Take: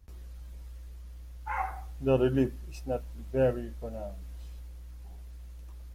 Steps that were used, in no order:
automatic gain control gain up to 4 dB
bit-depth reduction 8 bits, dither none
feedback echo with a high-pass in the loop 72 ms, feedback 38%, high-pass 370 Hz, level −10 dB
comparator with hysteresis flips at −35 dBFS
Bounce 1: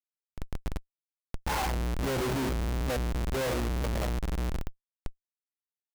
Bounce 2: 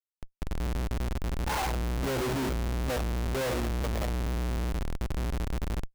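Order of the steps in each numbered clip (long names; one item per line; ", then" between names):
feedback echo with a high-pass in the loop, then bit-depth reduction, then automatic gain control, then comparator with hysteresis
automatic gain control, then bit-depth reduction, then feedback echo with a high-pass in the loop, then comparator with hysteresis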